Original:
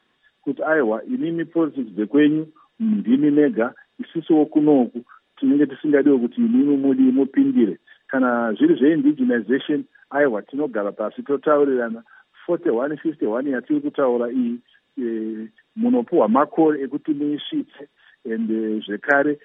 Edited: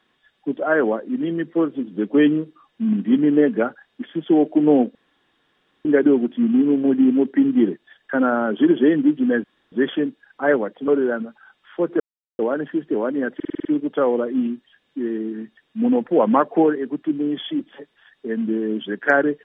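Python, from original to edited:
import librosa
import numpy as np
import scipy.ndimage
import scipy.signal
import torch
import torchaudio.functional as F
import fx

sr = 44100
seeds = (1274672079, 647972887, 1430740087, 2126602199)

y = fx.edit(x, sr, fx.room_tone_fill(start_s=4.95, length_s=0.9),
    fx.insert_room_tone(at_s=9.44, length_s=0.28),
    fx.cut(start_s=10.6, length_s=0.98),
    fx.insert_silence(at_s=12.7, length_s=0.39),
    fx.stutter(start_s=13.66, slice_s=0.05, count=7), tone=tone)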